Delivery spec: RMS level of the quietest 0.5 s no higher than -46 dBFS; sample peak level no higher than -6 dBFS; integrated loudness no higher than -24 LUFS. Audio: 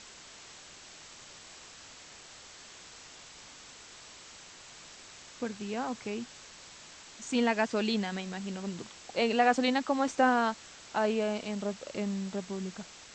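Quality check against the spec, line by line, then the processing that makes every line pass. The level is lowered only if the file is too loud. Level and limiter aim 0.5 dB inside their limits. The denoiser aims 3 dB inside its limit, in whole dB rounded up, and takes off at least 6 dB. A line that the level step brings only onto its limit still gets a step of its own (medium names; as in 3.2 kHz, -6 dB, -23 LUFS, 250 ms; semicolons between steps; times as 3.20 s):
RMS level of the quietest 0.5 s -51 dBFS: pass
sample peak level -11.5 dBFS: pass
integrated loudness -31.5 LUFS: pass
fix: none needed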